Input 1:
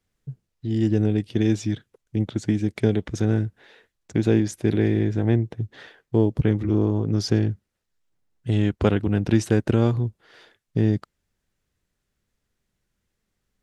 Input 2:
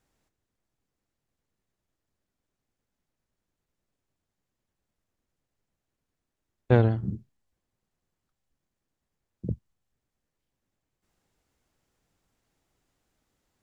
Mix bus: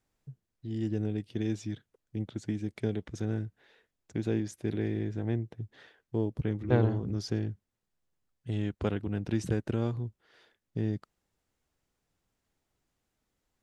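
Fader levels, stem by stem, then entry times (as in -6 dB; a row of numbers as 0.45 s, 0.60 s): -11.0 dB, -5.5 dB; 0.00 s, 0.00 s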